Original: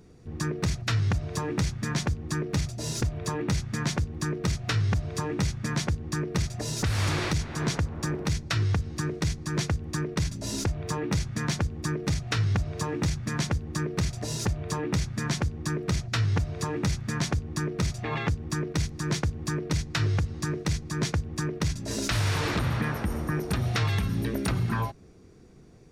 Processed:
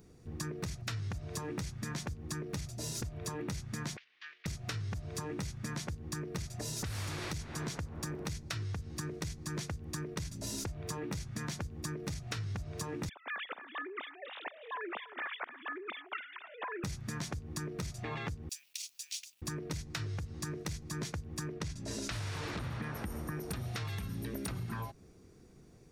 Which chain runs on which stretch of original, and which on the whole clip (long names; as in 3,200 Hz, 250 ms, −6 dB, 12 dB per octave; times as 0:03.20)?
0:03.97–0:04.46: variable-slope delta modulation 32 kbit/s + flat-topped band-pass 2,400 Hz, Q 1.5
0:13.09–0:16.84: three sine waves on the formant tracks + high-pass filter 860 Hz + repeating echo 287 ms, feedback 16%, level −15 dB
0:18.49–0:19.42: elliptic high-pass filter 2,600 Hz, stop band 70 dB + log-companded quantiser 6 bits
0:21.53–0:22.95: low-pass filter 10,000 Hz + high-shelf EQ 6,500 Hz −4.5 dB
whole clip: high-shelf EQ 9,300 Hz +11.5 dB; downward compressor, threshold −30 dBFS; level −5.5 dB